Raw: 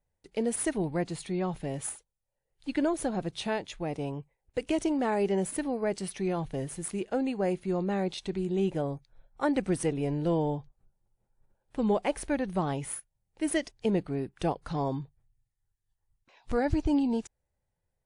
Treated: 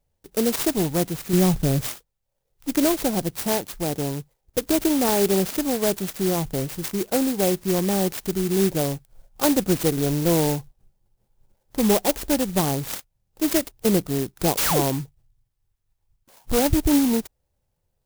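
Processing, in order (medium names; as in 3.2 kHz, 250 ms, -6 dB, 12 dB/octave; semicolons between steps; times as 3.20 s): 1.33–1.88 s: bass shelf 230 Hz +12 dB; 14.57–14.82 s: painted sound fall 260–5100 Hz -29 dBFS; sampling jitter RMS 0.14 ms; trim +7.5 dB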